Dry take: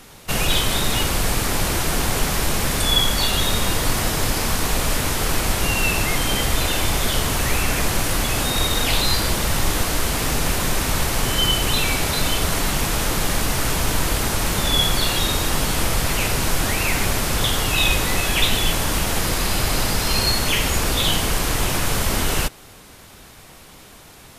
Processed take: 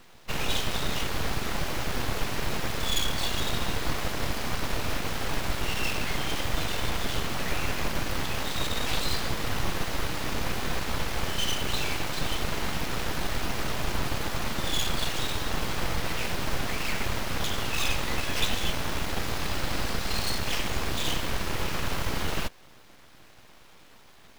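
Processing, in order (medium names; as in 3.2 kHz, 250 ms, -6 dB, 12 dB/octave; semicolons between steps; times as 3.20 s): median filter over 5 samples; full-wave rectifier; trim -6 dB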